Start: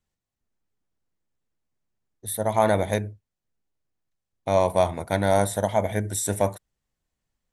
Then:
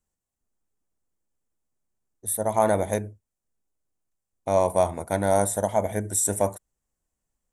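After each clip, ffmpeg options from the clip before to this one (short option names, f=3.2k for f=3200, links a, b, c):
-af "equalizer=f=125:t=o:w=1:g=-5,equalizer=f=2k:t=o:w=1:g=-4,equalizer=f=4k:t=o:w=1:g=-9,equalizer=f=8k:t=o:w=1:g=7"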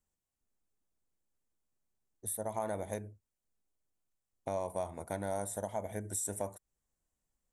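-af "acompressor=threshold=-34dB:ratio=2.5,volume=-4dB"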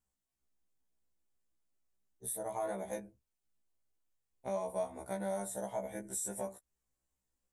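-af "afftfilt=real='re*1.73*eq(mod(b,3),0)':imag='im*1.73*eq(mod(b,3),0)':win_size=2048:overlap=0.75,volume=1dB"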